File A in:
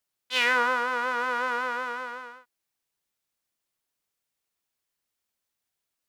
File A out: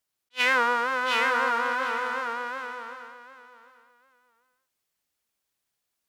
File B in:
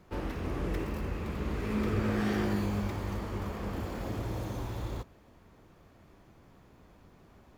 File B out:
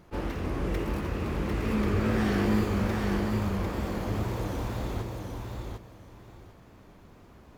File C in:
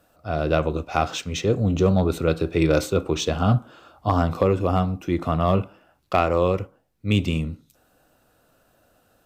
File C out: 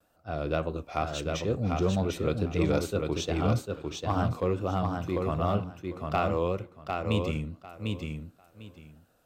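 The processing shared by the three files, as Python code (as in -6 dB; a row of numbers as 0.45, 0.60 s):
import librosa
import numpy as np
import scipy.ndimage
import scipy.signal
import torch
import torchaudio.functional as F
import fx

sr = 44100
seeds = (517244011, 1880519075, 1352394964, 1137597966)

p1 = fx.wow_flutter(x, sr, seeds[0], rate_hz=2.1, depth_cents=80.0)
p2 = p1 + fx.echo_feedback(p1, sr, ms=749, feedback_pct=19, wet_db=-4, dry=0)
p3 = fx.attack_slew(p2, sr, db_per_s=510.0)
y = p3 * 10.0 ** (-30 / 20.0) / np.sqrt(np.mean(np.square(p3)))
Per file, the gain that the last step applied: +1.0, +3.0, -8.0 dB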